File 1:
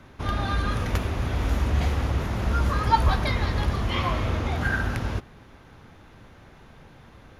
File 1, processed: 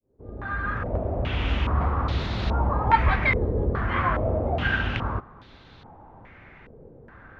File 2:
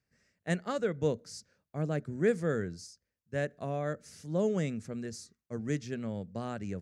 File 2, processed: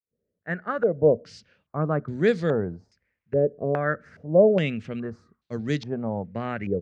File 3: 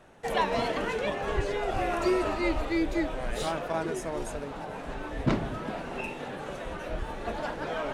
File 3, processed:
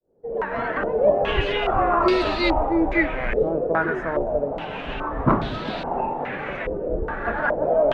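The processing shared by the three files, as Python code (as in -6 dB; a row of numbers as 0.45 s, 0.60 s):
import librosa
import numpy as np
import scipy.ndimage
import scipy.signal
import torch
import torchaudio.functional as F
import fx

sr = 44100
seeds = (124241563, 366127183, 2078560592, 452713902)

y = fx.fade_in_head(x, sr, length_s=1.19)
y = fx.filter_held_lowpass(y, sr, hz=2.4, low_hz=460.0, high_hz=4000.0)
y = librosa.util.normalize(y) * 10.0 ** (-6 / 20.0)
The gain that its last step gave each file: -1.0 dB, +6.0 dB, +5.5 dB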